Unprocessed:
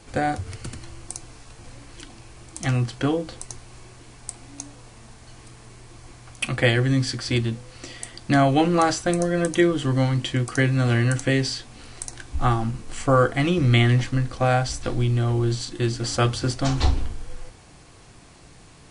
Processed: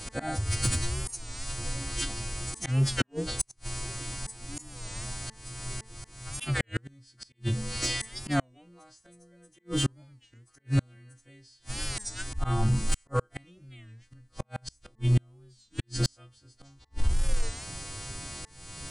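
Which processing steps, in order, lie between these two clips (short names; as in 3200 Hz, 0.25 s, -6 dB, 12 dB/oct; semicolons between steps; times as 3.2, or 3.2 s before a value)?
frequency quantiser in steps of 2 st; low shelf 160 Hz +9.5 dB; auto swell 0.414 s; de-hum 220.4 Hz, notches 9; flipped gate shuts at -16 dBFS, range -41 dB; in parallel at -3.5 dB: overloaded stage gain 26 dB; on the sum: record warp 33 1/3 rpm, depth 160 cents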